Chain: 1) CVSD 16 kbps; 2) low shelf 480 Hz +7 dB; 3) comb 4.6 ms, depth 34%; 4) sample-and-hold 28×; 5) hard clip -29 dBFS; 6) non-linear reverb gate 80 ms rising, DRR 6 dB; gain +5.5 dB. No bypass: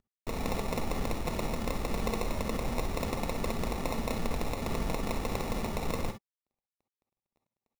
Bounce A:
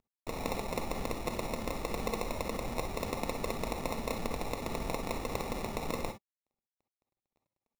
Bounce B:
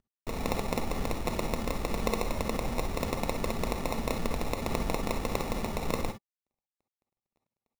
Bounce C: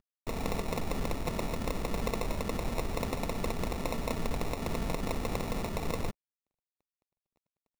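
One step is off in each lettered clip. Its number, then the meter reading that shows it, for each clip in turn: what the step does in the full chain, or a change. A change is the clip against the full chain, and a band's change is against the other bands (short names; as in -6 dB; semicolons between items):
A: 2, 125 Hz band -4.0 dB; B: 5, distortion -13 dB; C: 6, crest factor change -2.5 dB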